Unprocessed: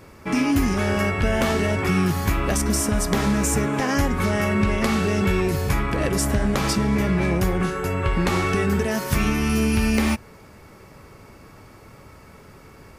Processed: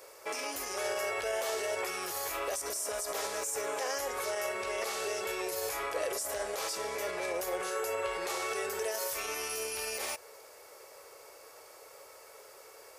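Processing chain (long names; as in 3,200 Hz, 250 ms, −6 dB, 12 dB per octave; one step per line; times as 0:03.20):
bass and treble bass −10 dB, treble +12 dB
brickwall limiter −19 dBFS, peak gain reduction 17 dB
low shelf with overshoot 330 Hz −14 dB, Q 3
level −7.5 dB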